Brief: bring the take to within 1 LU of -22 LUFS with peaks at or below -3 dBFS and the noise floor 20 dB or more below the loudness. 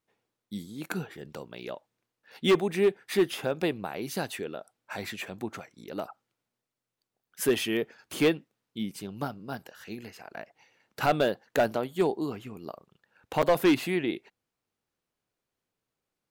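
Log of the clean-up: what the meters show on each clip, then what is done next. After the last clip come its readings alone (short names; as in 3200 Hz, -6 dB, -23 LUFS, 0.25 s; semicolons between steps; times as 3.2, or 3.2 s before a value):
clipped 0.6%; flat tops at -16.5 dBFS; dropouts 1; longest dropout 7.1 ms; loudness -29.5 LUFS; peak -16.5 dBFS; loudness target -22.0 LUFS
-> clip repair -16.5 dBFS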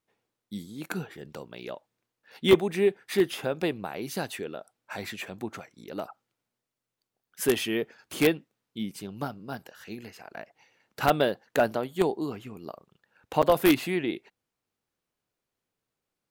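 clipped 0.0%; dropouts 1; longest dropout 7.1 ms
-> interpolate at 13.42, 7.1 ms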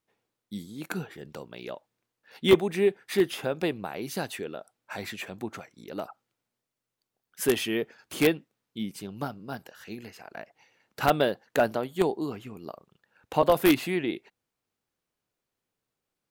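dropouts 0; loudness -28.0 LUFS; peak -7.5 dBFS; loudness target -22.0 LUFS
-> gain +6 dB; limiter -3 dBFS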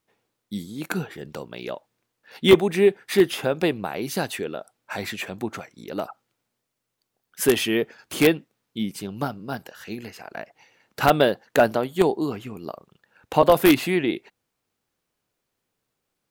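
loudness -22.5 LUFS; peak -3.0 dBFS; noise floor -80 dBFS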